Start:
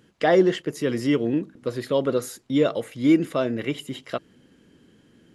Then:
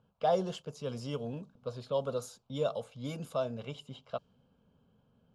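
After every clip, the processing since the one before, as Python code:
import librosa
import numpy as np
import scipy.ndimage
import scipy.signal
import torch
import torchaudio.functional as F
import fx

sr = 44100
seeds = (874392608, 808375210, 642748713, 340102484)

y = fx.env_lowpass(x, sr, base_hz=2100.0, full_db=-17.0)
y = fx.fixed_phaser(y, sr, hz=790.0, stages=4)
y = F.gain(torch.from_numpy(y), -6.0).numpy()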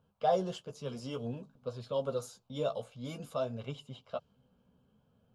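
y = fx.chorus_voices(x, sr, voices=2, hz=0.54, base_ms=12, depth_ms=4.7, mix_pct=35)
y = F.gain(torch.from_numpy(y), 1.5).numpy()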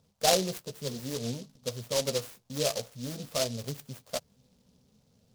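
y = fx.noise_mod_delay(x, sr, seeds[0], noise_hz=4600.0, depth_ms=0.17)
y = F.gain(torch.from_numpy(y), 4.0).numpy()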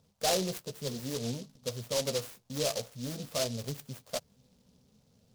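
y = 10.0 ** (-23.5 / 20.0) * np.tanh(x / 10.0 ** (-23.5 / 20.0))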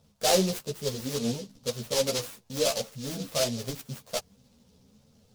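y = fx.ensemble(x, sr)
y = F.gain(torch.from_numpy(y), 8.0).numpy()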